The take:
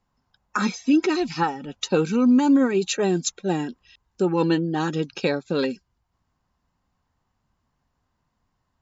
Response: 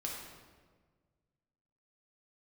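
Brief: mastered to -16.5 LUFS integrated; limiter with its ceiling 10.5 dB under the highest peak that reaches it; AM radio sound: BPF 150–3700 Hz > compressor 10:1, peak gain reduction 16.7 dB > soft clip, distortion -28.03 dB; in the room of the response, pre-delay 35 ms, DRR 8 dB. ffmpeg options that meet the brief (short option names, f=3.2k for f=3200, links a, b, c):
-filter_complex "[0:a]alimiter=limit=-20dB:level=0:latency=1,asplit=2[a][b];[1:a]atrim=start_sample=2205,adelay=35[c];[b][c]afir=irnorm=-1:irlink=0,volume=-9dB[d];[a][d]amix=inputs=2:normalize=0,highpass=150,lowpass=3.7k,acompressor=threshold=-38dB:ratio=10,asoftclip=threshold=-27dB,volume=26dB"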